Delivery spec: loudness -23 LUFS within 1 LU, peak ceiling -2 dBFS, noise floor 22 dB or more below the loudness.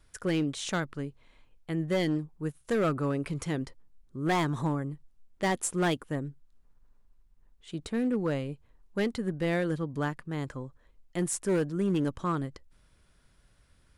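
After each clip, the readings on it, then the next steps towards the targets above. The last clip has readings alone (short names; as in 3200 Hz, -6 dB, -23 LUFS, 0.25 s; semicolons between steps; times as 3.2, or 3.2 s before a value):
clipped 1.6%; flat tops at -22.0 dBFS; loudness -31.5 LUFS; peak -22.0 dBFS; loudness target -23.0 LUFS
-> clip repair -22 dBFS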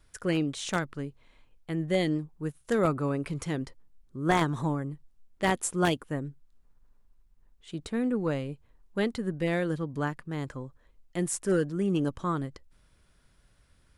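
clipped 0.0%; loudness -30.5 LUFS; peak -13.0 dBFS; loudness target -23.0 LUFS
-> gain +7.5 dB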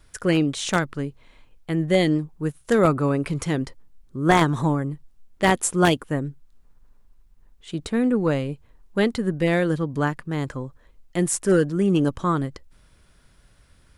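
loudness -23.0 LUFS; peak -5.5 dBFS; noise floor -57 dBFS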